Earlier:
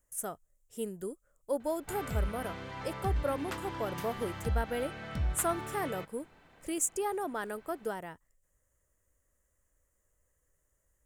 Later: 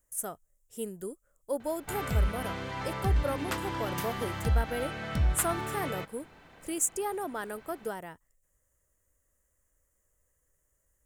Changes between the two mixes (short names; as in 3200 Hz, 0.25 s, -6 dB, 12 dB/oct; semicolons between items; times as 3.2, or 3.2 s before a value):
background +5.5 dB; master: add high shelf 7900 Hz +5 dB